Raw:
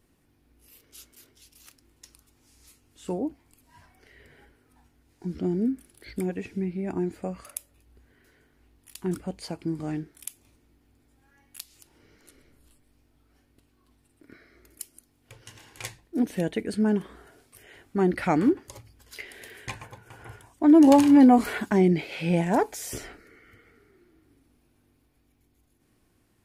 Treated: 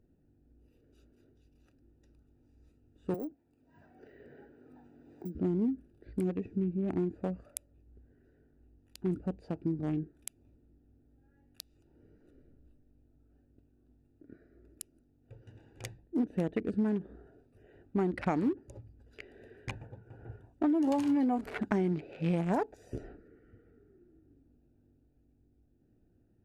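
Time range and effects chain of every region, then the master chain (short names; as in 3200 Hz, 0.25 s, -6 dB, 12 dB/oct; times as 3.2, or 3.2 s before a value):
3.14–5.35 HPF 310 Hz 6 dB/oct + careless resampling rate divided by 2×, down filtered, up zero stuff + three-band squash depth 70%
whole clip: Wiener smoothing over 41 samples; high shelf 8800 Hz -8.5 dB; compressor 10:1, threshold -26 dBFS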